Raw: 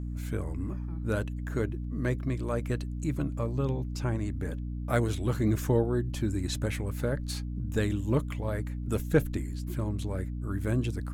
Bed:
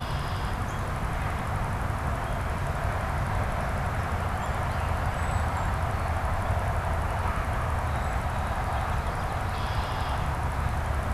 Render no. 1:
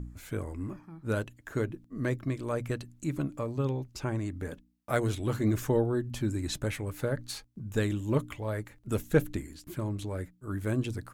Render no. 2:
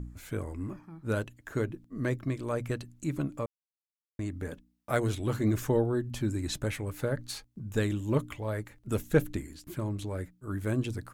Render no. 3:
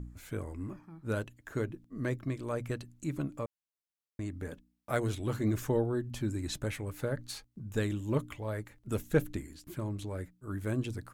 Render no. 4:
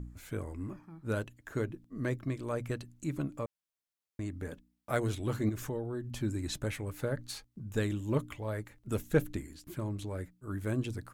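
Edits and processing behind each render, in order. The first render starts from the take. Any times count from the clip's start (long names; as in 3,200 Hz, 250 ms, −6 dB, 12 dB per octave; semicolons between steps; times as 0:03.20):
hum removal 60 Hz, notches 5
0:03.46–0:04.19: silence
level −3 dB
0:05.49–0:06.08: downward compressor 2.5 to 1, threshold −35 dBFS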